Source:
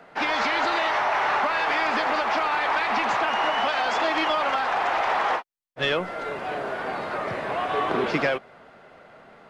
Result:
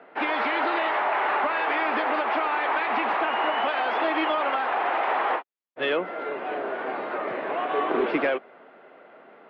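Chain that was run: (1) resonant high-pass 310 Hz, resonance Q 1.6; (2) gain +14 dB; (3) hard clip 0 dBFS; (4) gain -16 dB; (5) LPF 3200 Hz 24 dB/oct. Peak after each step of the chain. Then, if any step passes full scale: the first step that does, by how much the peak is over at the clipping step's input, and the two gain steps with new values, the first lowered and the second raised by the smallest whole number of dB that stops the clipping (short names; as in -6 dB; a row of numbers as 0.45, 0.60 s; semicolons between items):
-10.0, +4.0, 0.0, -16.0, -15.0 dBFS; step 2, 4.0 dB; step 2 +10 dB, step 4 -12 dB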